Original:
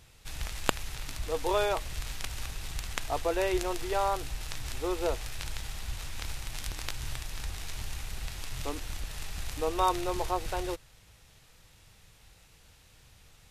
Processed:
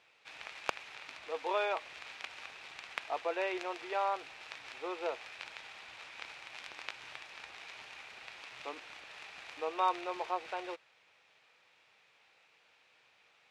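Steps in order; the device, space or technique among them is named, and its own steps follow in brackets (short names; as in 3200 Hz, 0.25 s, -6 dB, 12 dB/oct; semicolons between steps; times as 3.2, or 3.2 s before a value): megaphone (BPF 520–3200 Hz; bell 2400 Hz +6 dB 0.26 oct; hard clip -12.5 dBFS, distortion -22 dB); gain -3 dB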